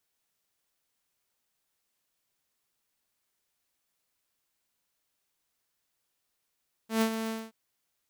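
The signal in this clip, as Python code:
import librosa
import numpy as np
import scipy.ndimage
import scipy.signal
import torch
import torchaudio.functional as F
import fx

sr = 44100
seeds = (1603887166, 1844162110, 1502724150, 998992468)

y = fx.adsr_tone(sr, wave='saw', hz=223.0, attack_ms=123.0, decay_ms=81.0, sustain_db=-9.0, held_s=0.4, release_ms=225.0, level_db=-19.5)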